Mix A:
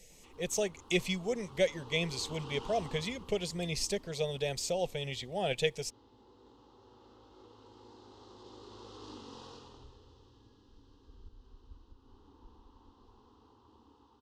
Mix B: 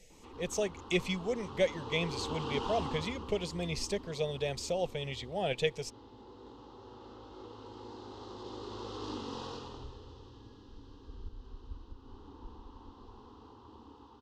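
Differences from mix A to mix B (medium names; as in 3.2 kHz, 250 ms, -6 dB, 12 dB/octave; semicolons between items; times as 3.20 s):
background +8.5 dB; master: add treble shelf 7.2 kHz -10 dB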